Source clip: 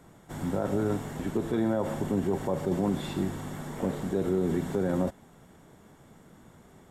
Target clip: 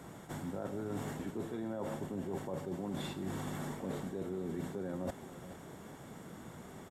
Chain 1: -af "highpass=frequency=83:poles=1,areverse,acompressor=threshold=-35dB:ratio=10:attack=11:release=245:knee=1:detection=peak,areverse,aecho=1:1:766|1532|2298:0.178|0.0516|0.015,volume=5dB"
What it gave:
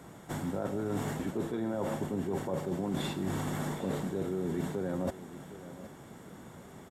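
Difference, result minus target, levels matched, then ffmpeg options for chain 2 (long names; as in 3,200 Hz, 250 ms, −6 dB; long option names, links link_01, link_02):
echo 338 ms late; downward compressor: peak gain reduction −6 dB
-af "highpass=frequency=83:poles=1,areverse,acompressor=threshold=-41.5dB:ratio=10:attack=11:release=245:knee=1:detection=peak,areverse,aecho=1:1:428|856|1284:0.178|0.0516|0.015,volume=5dB"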